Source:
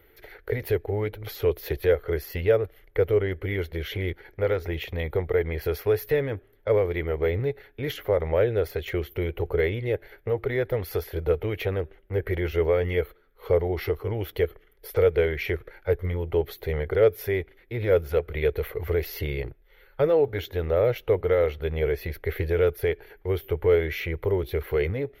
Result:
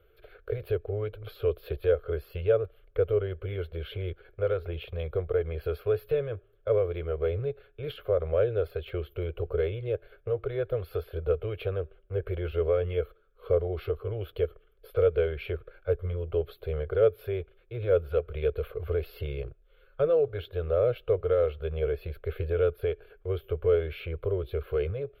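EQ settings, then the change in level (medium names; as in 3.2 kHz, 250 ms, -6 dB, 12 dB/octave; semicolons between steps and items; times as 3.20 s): low-pass 2.3 kHz 6 dB/octave; static phaser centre 1.3 kHz, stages 8; -2.0 dB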